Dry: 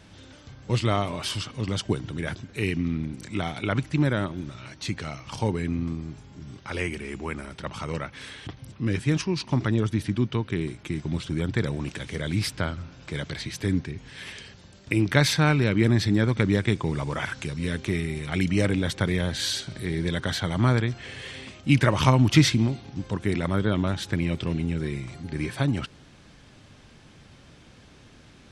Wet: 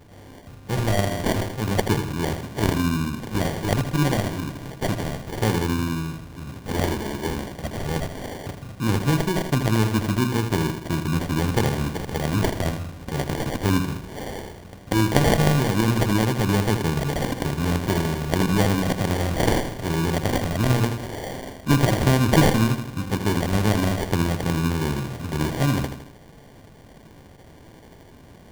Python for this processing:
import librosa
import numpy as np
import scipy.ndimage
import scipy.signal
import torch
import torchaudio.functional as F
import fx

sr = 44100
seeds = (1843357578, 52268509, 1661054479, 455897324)

p1 = fx.tracing_dist(x, sr, depth_ms=0.28)
p2 = fx.high_shelf(p1, sr, hz=6100.0, db=11.5)
p3 = fx.hum_notches(p2, sr, base_hz=60, count=6)
p4 = fx.rider(p3, sr, range_db=4, speed_s=0.5)
p5 = p3 + F.gain(torch.from_numpy(p4), 3.0).numpy()
p6 = fx.sample_hold(p5, sr, seeds[0], rate_hz=1300.0, jitter_pct=0)
p7 = p6 + fx.echo_feedback(p6, sr, ms=80, feedback_pct=48, wet_db=-8.5, dry=0)
y = F.gain(torch.from_numpy(p7), -5.0).numpy()